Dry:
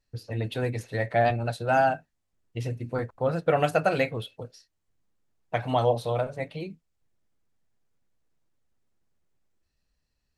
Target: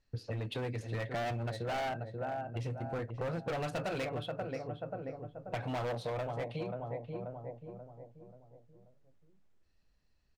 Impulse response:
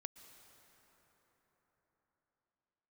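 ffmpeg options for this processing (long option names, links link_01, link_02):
-filter_complex "[0:a]asplit=2[link_01][link_02];[link_02]adelay=534,lowpass=frequency=1100:poles=1,volume=-9dB,asplit=2[link_03][link_04];[link_04]adelay=534,lowpass=frequency=1100:poles=1,volume=0.46,asplit=2[link_05][link_06];[link_06]adelay=534,lowpass=frequency=1100:poles=1,volume=0.46,asplit=2[link_07][link_08];[link_08]adelay=534,lowpass=frequency=1100:poles=1,volume=0.46,asplit=2[link_09][link_10];[link_10]adelay=534,lowpass=frequency=1100:poles=1,volume=0.46[link_11];[link_01][link_03][link_05][link_07][link_09][link_11]amix=inputs=6:normalize=0,adynamicsmooth=sensitivity=7.5:basefreq=6900,asoftclip=type=hard:threshold=-25.5dB,acompressor=threshold=-37dB:ratio=6,volume=2dB"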